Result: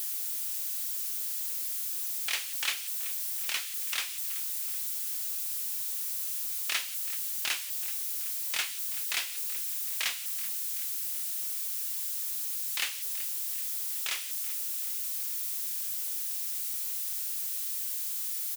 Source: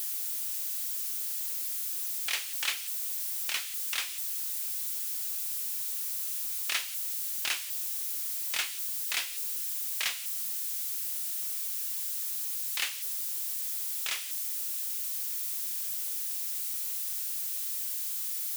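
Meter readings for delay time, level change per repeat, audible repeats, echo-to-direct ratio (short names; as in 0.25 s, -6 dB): 0.379 s, -5.0 dB, 3, -15.0 dB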